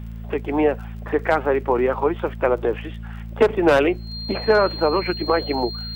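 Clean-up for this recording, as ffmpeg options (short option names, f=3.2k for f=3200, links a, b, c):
-af "adeclick=t=4,bandreject=f=55.9:t=h:w=4,bandreject=f=111.8:t=h:w=4,bandreject=f=167.7:t=h:w=4,bandreject=f=223.6:t=h:w=4,bandreject=f=4.2k:w=30"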